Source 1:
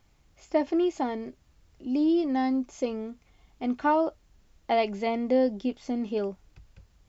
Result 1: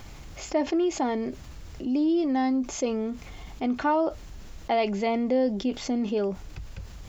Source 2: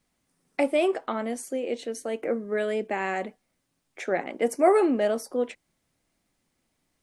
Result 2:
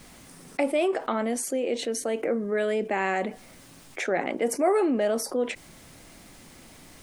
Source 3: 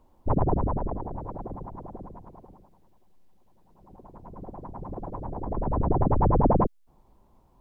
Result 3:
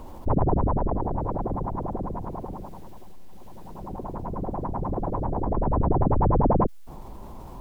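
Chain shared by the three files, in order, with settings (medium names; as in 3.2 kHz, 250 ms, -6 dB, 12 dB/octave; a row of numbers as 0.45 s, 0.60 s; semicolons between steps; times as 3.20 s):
level flattener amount 50%; normalise loudness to -27 LUFS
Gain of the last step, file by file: -1.5 dB, -4.0 dB, -1.0 dB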